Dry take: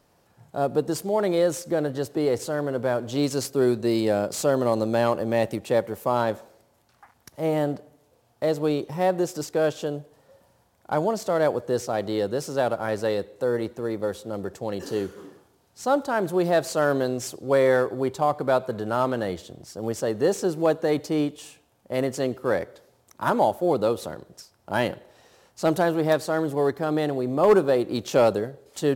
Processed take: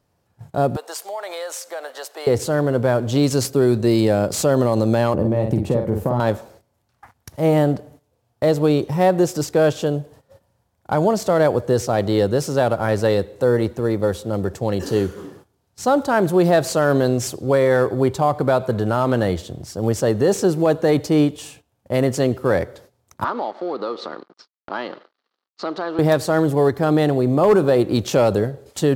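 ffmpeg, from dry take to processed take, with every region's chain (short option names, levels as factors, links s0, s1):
-filter_complex "[0:a]asettb=1/sr,asplit=3[s0][s1][s2];[s0]atrim=end=0.764[s3];[s1]atrim=start=0.76:end=2.27,asetpts=PTS-STARTPTS,afade=t=in:d=0.004:c=qsin,afade=t=out:st=1.506:d=0.004:c=qsin,highpass=f=670:w=0.5412,highpass=f=670:w=1.3066,acompressor=threshold=0.02:ratio=3:attack=3.2:release=140:knee=1:detection=peak[s4];[s2]atrim=start=2.266[s5];[s3][s4]acrossfade=d=0.004:c1=hsin:c2=qsin[s6];[s6][s5]acrossfade=d=0.004:c1=qsin:c2=hsin,asettb=1/sr,asplit=3[s7][s8][s9];[s7]atrim=end=5.144[s10];[s8]atrim=start=5.14:end=6.2,asetpts=PTS-STARTPTS,afade=t=in:d=0.004:c=qsin,afade=t=out:st=1.056:d=0.004:c=qsin,tiltshelf=f=900:g=8.5,acompressor=threshold=0.0631:ratio=5:attack=3.2:release=140:knee=1:detection=peak,asplit=2[s11][s12];[s12]adelay=50,volume=0.562[s13];[s11][s13]amix=inputs=2:normalize=0,atrim=end_sample=46746[s14];[s9]atrim=start=6.196[s15];[s10][s14]acrossfade=d=0.004:c1=hsin:c2=qsin[s16];[s16][s15]acrossfade=d=0.004:c1=qsin:c2=hsin,asettb=1/sr,asplit=3[s17][s18][s19];[s17]atrim=end=23.244[s20];[s18]atrim=start=23.24:end=25.99,asetpts=PTS-STARTPTS,afade=t=in:d=0.004:c=qsin,afade=t=out:st=2.746:d=0.004:c=qsin,acompressor=threshold=0.0316:ratio=3:attack=3.2:release=140:knee=1:detection=peak,aeval=exprs='sgn(val(0))*max(abs(val(0))-0.00282,0)':c=same,highpass=f=260:w=0.5412,highpass=f=260:w=1.3066,equalizer=f=590:t=q:w=4:g=-3,equalizer=f=1200:t=q:w=4:g=9,equalizer=f=2500:t=q:w=4:g=-4,equalizer=f=4400:t=q:w=4:g=6,lowpass=f=4600:w=0.5412,lowpass=f=4600:w=1.3066[s21];[s19]atrim=start=25.986[s22];[s20][s21]acrossfade=d=0.004:c1=hsin:c2=qsin[s23];[s23][s22]acrossfade=d=0.004:c1=qsin:c2=hsin,agate=range=0.2:threshold=0.00224:ratio=16:detection=peak,equalizer=f=86:t=o:w=1.8:g=9,alimiter=level_in=4.22:limit=0.891:release=50:level=0:latency=1,volume=0.501"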